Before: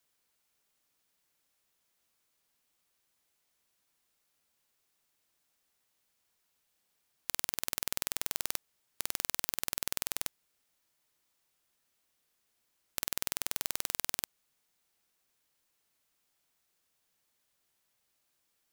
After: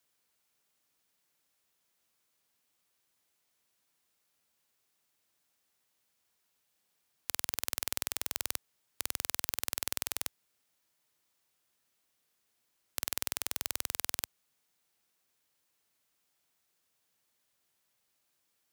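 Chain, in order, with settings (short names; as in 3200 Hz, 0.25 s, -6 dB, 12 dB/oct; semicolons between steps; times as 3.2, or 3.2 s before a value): HPF 61 Hz 12 dB/oct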